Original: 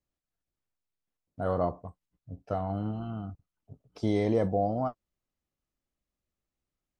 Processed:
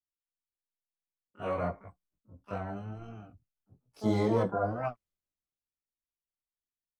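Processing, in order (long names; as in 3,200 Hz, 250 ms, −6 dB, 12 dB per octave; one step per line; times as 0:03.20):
multi-voice chorus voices 4, 0.93 Hz, delay 21 ms, depth 4.1 ms
pitch-shifted copies added +12 semitones −8 dB
multiband upward and downward expander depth 40%
level −1.5 dB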